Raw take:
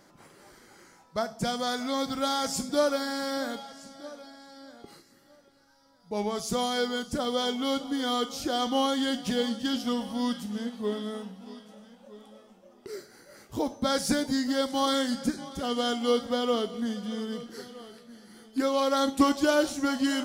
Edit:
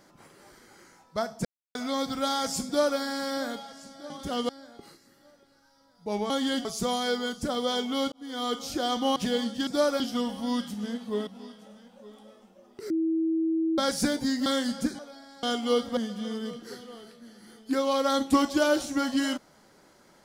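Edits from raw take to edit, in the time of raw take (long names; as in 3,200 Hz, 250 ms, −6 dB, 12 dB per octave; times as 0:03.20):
0:01.45–0:01.75: silence
0:02.66–0:02.99: duplicate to 0:09.72
0:04.10–0:04.54: swap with 0:15.42–0:15.81
0:07.82–0:08.26: fade in
0:08.86–0:09.21: move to 0:06.35
0:10.99–0:11.34: remove
0:12.97–0:13.85: beep over 324 Hz −23 dBFS
0:14.53–0:14.89: remove
0:16.35–0:16.84: remove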